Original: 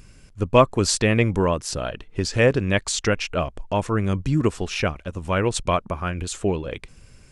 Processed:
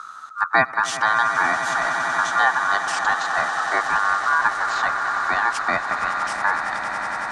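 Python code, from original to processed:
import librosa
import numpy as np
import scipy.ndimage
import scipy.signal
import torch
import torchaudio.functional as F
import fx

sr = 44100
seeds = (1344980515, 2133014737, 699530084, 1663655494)

y = scipy.signal.sosfilt(scipy.signal.butter(2, 4900.0, 'lowpass', fs=sr, output='sos'), x)
y = fx.peak_eq(y, sr, hz=1600.0, db=-12.0, octaves=1.6)
y = fx.notch(y, sr, hz=1400.0, q=5.7)
y = y * np.sin(2.0 * np.pi * 1300.0 * np.arange(len(y)) / sr)
y = fx.echo_swell(y, sr, ms=93, loudest=8, wet_db=-15.0)
y = fx.band_squash(y, sr, depth_pct=40)
y = y * 10.0 ** (4.0 / 20.0)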